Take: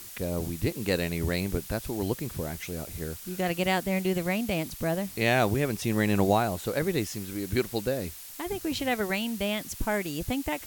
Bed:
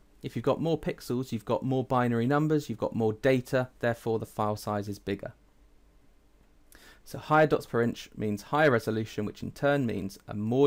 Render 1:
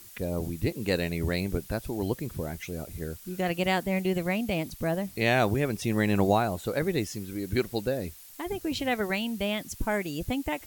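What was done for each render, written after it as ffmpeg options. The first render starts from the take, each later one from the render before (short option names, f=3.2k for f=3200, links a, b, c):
-af "afftdn=nr=7:nf=-44"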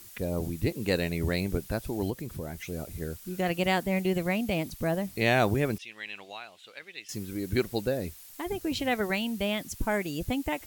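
-filter_complex "[0:a]asettb=1/sr,asplit=3[a][b][c];[a]atrim=end=2.104[d];[b]atrim=start=2.1:end=2.69,asetpts=PTS-STARTPTS,afade=t=in:d=0.004:c=qsin,afade=t=out:st=0.586:d=0.004:c=qsin,acompressor=threshold=-37dB:ratio=1.5:attack=3.2:release=140:knee=1:detection=peak[e];[c]atrim=start=2.686[f];[d][e]acrossfade=d=0.004:c1=hsin:c2=qsin[g];[g][f]acrossfade=d=0.004:c1=qsin:c2=hsin,asettb=1/sr,asplit=3[h][i][j];[h]atrim=end=5.784[k];[i]atrim=start=5.78:end=7.09,asetpts=PTS-STARTPTS,afade=t=in:d=0.004:c=qsin,afade=t=out:st=1.306:d=0.004:c=qsin,bandpass=f=2.9k:t=q:w=2.6[l];[j]atrim=start=7.086[m];[k][l]acrossfade=d=0.004:c1=hsin:c2=qsin[n];[n][m]acrossfade=d=0.004:c1=qsin:c2=hsin"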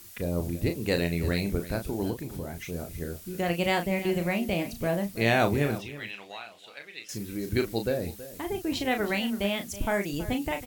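-filter_complex "[0:a]asplit=2[a][b];[b]adelay=35,volume=-7dB[c];[a][c]amix=inputs=2:normalize=0,aecho=1:1:325:0.168"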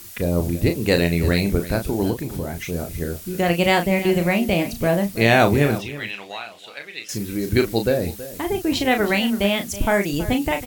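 -af "volume=8.5dB,alimiter=limit=-3dB:level=0:latency=1"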